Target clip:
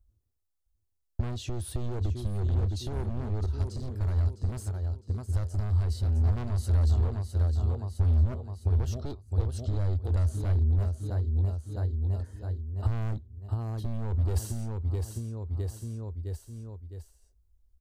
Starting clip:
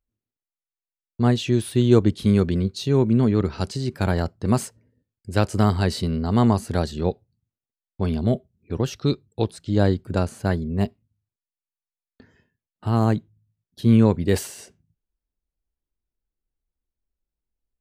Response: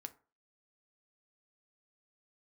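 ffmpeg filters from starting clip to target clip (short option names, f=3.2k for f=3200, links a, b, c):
-filter_complex "[0:a]equalizer=f=2.3k:t=o:w=1.2:g=-11.5,aecho=1:1:659|1318|1977|2636:0.316|0.133|0.0558|0.0234,alimiter=limit=-12.5dB:level=0:latency=1:release=38,asoftclip=type=hard:threshold=-22dB,acompressor=threshold=-37dB:ratio=20,asettb=1/sr,asplit=3[a][b][c];[a]atrim=end=3.464[d];[b]atrim=start=3.46:end=6.16,asetpts=PTS-STARTPTS,afade=t=in:d=0.004:c=qsin,afade=t=out:st=2.696:d=0.004:c=qsin,agate=range=-33dB:threshold=-37dB:ratio=3:detection=peak[e];[c]atrim=start=6.156[f];[d][e]acrossfade=d=0.004:c1=hsin:c2=qsin[g];[g][f]acrossfade=d=0.004:c1=qsin:c2=hsin,lowshelf=f=110:t=q:w=3:g=13.5,volume=4dB"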